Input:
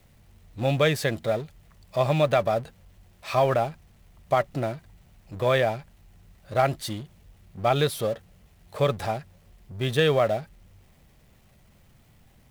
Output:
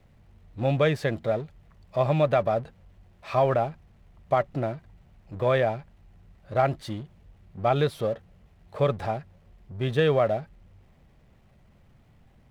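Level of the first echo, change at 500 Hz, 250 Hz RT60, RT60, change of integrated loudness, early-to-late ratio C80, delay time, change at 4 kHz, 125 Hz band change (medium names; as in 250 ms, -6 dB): no echo, -0.5 dB, no reverb, no reverb, -1.0 dB, no reverb, no echo, -6.5 dB, 0.0 dB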